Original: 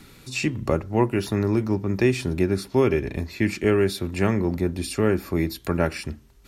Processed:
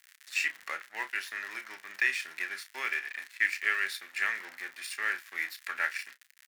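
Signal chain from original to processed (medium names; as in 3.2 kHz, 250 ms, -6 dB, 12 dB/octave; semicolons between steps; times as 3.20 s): crackle 110 per s -31 dBFS; crossover distortion -37.5 dBFS; resonant high-pass 1.8 kHz, resonance Q 4.1; doubling 31 ms -11 dB; trim -4.5 dB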